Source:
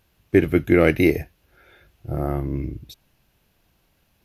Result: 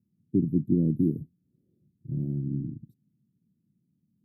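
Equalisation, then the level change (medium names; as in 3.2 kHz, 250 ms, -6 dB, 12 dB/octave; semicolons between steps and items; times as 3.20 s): high-pass 140 Hz 24 dB/octave; elliptic band-stop 230–9100 Hz, stop band 80 dB; distance through air 480 m; +2.5 dB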